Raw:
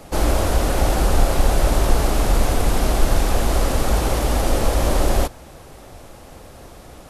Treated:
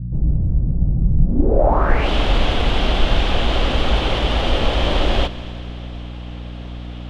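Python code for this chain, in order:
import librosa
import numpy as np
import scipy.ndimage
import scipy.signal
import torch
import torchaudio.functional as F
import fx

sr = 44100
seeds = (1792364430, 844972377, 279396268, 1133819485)

y = fx.add_hum(x, sr, base_hz=60, snr_db=13)
y = fx.filter_sweep_lowpass(y, sr, from_hz=150.0, to_hz=3200.0, start_s=1.21, end_s=2.09, q=4.3)
y = fx.echo_heads(y, sr, ms=81, heads='all three', feedback_pct=69, wet_db=-23)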